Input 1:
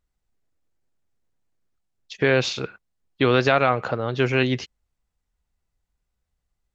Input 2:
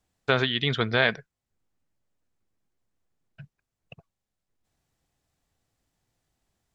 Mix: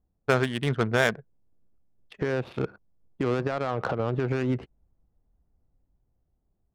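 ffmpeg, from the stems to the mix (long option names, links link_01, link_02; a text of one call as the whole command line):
ffmpeg -i stem1.wav -i stem2.wav -filter_complex "[0:a]acompressor=threshold=-21dB:ratio=4,alimiter=limit=-23.5dB:level=0:latency=1:release=246,dynaudnorm=framelen=340:gausssize=7:maxgain=9dB,volume=0dB[link_01];[1:a]volume=1.5dB[link_02];[link_01][link_02]amix=inputs=2:normalize=0,lowpass=frequency=1800:poles=1,adynamicsmooth=sensitivity=2:basefreq=720" out.wav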